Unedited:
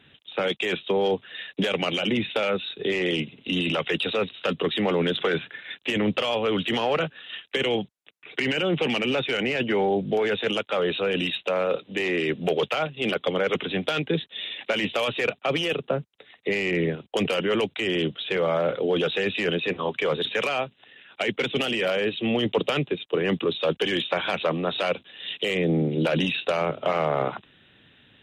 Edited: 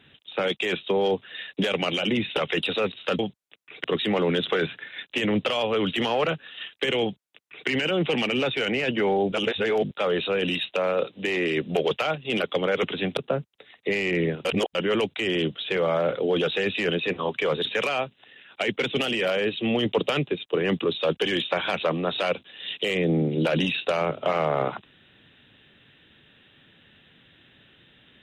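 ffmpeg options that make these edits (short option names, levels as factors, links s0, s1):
-filter_complex "[0:a]asplit=9[s0][s1][s2][s3][s4][s5][s6][s7][s8];[s0]atrim=end=2.372[s9];[s1]atrim=start=3.738:end=4.562[s10];[s2]atrim=start=7.738:end=8.392[s11];[s3]atrim=start=4.558:end=10.042[s12];[s4]atrim=start=10.038:end=10.632,asetpts=PTS-STARTPTS,areverse[s13];[s5]atrim=start=10.628:end=13.892[s14];[s6]atrim=start=15.768:end=17.052[s15];[s7]atrim=start=17.048:end=17.352,asetpts=PTS-STARTPTS,areverse[s16];[s8]atrim=start=17.348[s17];[s9][s10]acrossfade=d=0.004:c1=hsin:c2=hsin[s18];[s18][s11]acrossfade=d=0.004:c1=hsin:c2=hsin[s19];[s19][s12]acrossfade=d=0.004:c1=hsin:c2=hsin[s20];[s20][s13]acrossfade=d=0.004:c1=hsin:c2=hsin[s21];[s21][s14]acrossfade=d=0.004:c1=hsin:c2=hsin[s22];[s22][s15]acrossfade=d=0.004:c1=hsin:c2=hsin[s23];[s23][s16]acrossfade=d=0.004:c1=hsin:c2=hsin[s24];[s24][s17]acrossfade=d=0.004:c1=hsin:c2=hsin"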